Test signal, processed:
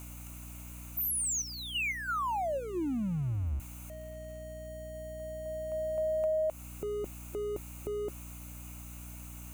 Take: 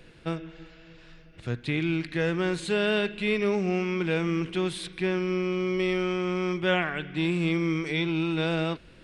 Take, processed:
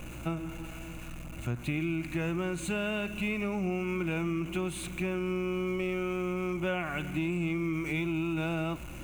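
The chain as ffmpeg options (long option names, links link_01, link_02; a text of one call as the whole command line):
ffmpeg -i in.wav -af "aeval=exprs='val(0)+0.5*0.01*sgn(val(0))':channel_layout=same,aeval=exprs='val(0)+0.00562*(sin(2*PI*60*n/s)+sin(2*PI*2*60*n/s)/2+sin(2*PI*3*60*n/s)/3+sin(2*PI*4*60*n/s)/4+sin(2*PI*5*60*n/s)/5)':channel_layout=same,superequalizer=7b=0.398:11b=0.398:13b=0.316:14b=0.251,acompressor=threshold=-28dB:ratio=6" out.wav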